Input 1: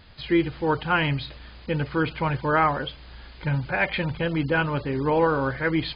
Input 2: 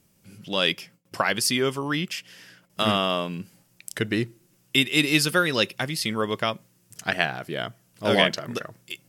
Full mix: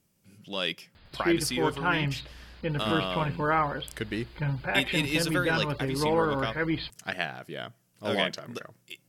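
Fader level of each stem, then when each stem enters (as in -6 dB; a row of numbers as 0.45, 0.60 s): -4.5, -7.5 dB; 0.95, 0.00 s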